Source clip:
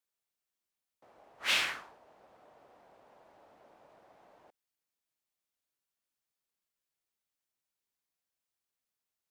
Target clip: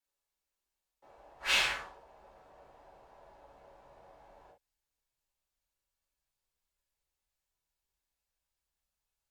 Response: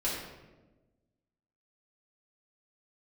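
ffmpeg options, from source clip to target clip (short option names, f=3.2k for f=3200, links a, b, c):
-filter_complex "[0:a]asubboost=boost=3:cutoff=140[a];[1:a]atrim=start_sample=2205,afade=t=out:st=0.18:d=0.01,atrim=end_sample=8379,asetrate=74970,aresample=44100[b];[a][b]afir=irnorm=-1:irlink=0"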